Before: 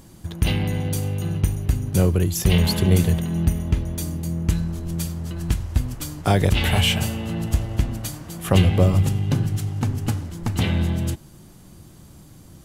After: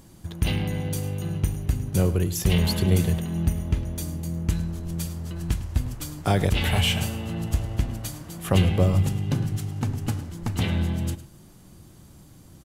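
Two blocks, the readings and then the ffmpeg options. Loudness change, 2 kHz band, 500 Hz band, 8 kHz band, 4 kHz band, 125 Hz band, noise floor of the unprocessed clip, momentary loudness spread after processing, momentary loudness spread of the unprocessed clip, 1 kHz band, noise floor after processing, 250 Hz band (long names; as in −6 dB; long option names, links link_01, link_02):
−3.5 dB, −3.5 dB, −3.5 dB, −3.5 dB, −3.5 dB, −3.5 dB, −46 dBFS, 10 LU, 10 LU, −3.5 dB, −50 dBFS, −3.5 dB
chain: -af "aecho=1:1:106:0.168,volume=-3.5dB"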